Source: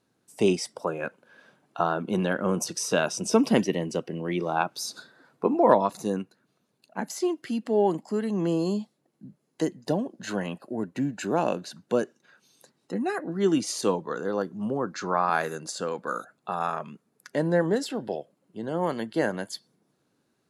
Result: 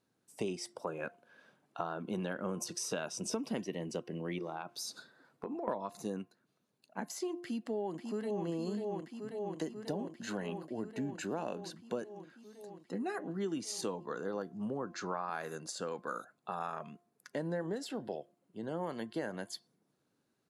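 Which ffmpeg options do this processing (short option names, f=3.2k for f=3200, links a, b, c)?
-filter_complex "[0:a]asettb=1/sr,asplit=3[a][b][c];[a]atrim=end=4.384[d];[b]atrim=start=4.38:end=5.68,asetpts=PTS-STARTPTS,afade=t=in:d=0.004:c=qsin,afade=t=out:st=1.296:d=0.004:c=qsin,acompressor=threshold=-29dB:ratio=6:attack=3.2:release=140:knee=1:detection=peak[e];[c]atrim=start=5.676[f];[d][e]acrossfade=d=0.004:c1=hsin:c2=qsin[g];[g][f]acrossfade=d=0.004:c1=qsin:c2=hsin,asplit=2[h][i];[i]afade=t=in:st=7.38:d=0.01,afade=t=out:st=8.46:d=0.01,aecho=0:1:540|1080|1620|2160|2700|3240|3780|4320|4860|5400|5940|6480:0.446684|0.357347|0.285877|0.228702|0.182962|0.146369|0.117095|0.0936763|0.0749411|0.0599529|0.0479623|0.0383698[j];[h][j]amix=inputs=2:normalize=0,bandreject=f=350.4:t=h:w=4,bandreject=f=700.8:t=h:w=4,bandreject=f=1.0512k:t=h:w=4,acompressor=threshold=-26dB:ratio=6,volume=-7dB"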